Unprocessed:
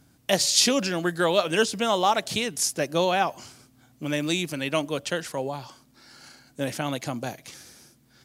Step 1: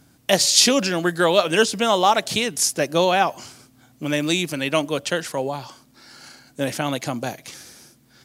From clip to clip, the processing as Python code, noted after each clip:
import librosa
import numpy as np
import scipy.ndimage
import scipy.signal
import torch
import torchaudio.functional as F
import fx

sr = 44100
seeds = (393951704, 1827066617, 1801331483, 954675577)

y = fx.low_shelf(x, sr, hz=110.0, db=-4.5)
y = y * 10.0 ** (5.0 / 20.0)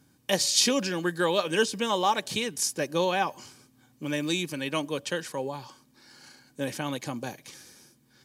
y = fx.notch_comb(x, sr, f0_hz=680.0)
y = y * 10.0 ** (-6.5 / 20.0)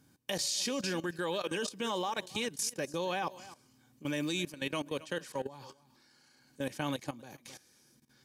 y = x + 10.0 ** (-19.0 / 20.0) * np.pad(x, (int(267 * sr / 1000.0), 0))[:len(x)]
y = fx.level_steps(y, sr, step_db=16)
y = y * 10.0 ** (-1.5 / 20.0)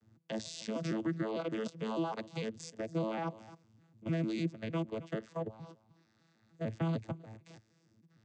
y = fx.vocoder_arp(x, sr, chord='bare fifth', root=45, every_ms=151)